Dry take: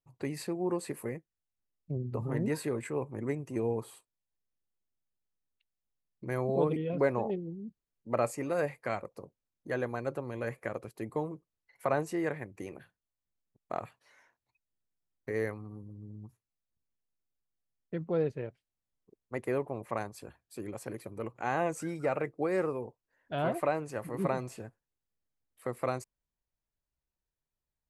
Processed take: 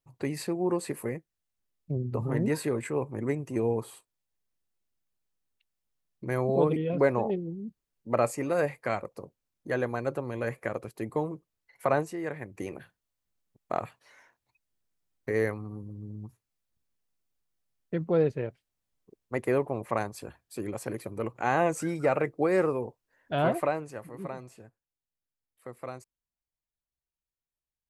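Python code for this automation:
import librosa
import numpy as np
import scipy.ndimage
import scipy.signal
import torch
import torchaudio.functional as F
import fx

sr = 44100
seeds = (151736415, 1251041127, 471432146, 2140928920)

y = fx.gain(x, sr, db=fx.line((11.98, 4.0), (12.17, -3.5), (12.62, 5.5), (23.47, 5.5), (24.2, -7.0)))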